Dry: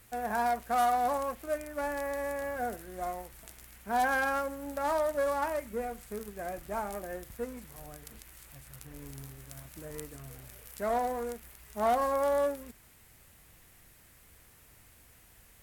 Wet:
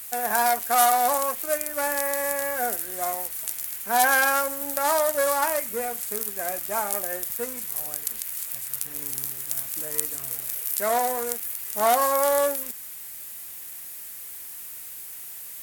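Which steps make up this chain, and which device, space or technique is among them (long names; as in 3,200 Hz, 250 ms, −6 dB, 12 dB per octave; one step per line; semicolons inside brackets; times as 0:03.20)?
turntable without a phono preamp (RIAA equalisation recording; white noise bed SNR 30 dB)
level +7.5 dB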